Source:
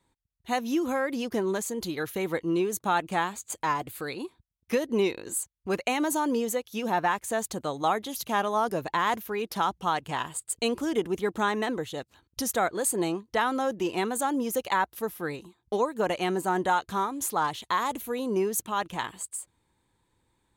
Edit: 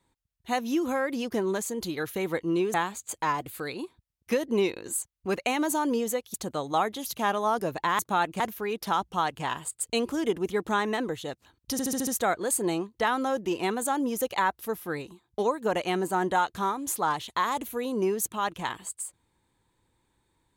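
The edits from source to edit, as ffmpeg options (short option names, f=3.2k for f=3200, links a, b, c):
-filter_complex "[0:a]asplit=10[a][b][c][d][e][f][g][h][i][j];[a]atrim=end=2.742[k];[b]atrim=start=3.148:end=6.752[l];[c]atrim=start=7.438:end=9.092[m];[d]atrim=start=2.738:end=3.152[n];[e]atrim=start=9.088:end=12.482[o];[f]atrim=start=12.408:end=12.482[p];[g]atrim=start=12.408:end=12.482[q];[h]atrim=start=12.408:end=12.482[r];[i]atrim=start=12.408:end=12.482[s];[j]atrim=start=12.408[t];[k][l]acrossfade=d=0.004:c1=hsin:c2=hsin[u];[u][m]acrossfade=d=0.004:c1=hsin:c2=hsin[v];[v][n]acrossfade=d=0.004:c1=hsin:c2=hsin[w];[w][o]acrossfade=d=0.004:c1=hsin:c2=hsin[x];[x][p]acrossfade=d=0.004:c1=hsin:c2=hsin[y];[y][q]acrossfade=d=0.004:c1=hsin:c2=hsin[z];[z][r]acrossfade=d=0.004:c1=hsin:c2=hsin[aa];[aa][s]acrossfade=d=0.004:c1=hsin:c2=hsin[ab];[ab][t]acrossfade=d=0.004:c1=hsin:c2=hsin"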